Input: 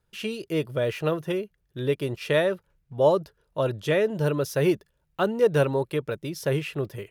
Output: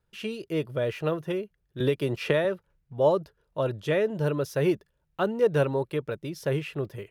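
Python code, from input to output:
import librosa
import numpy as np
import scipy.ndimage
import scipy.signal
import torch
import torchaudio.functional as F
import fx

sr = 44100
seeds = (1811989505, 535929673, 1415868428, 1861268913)

y = fx.high_shelf(x, sr, hz=4200.0, db=-5.5)
y = fx.band_squash(y, sr, depth_pct=100, at=(1.8, 2.45))
y = F.gain(torch.from_numpy(y), -2.0).numpy()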